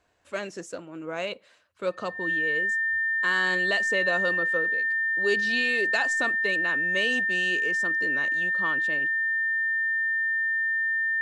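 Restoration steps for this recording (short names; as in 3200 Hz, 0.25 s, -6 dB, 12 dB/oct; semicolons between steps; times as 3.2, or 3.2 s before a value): notch 1800 Hz, Q 30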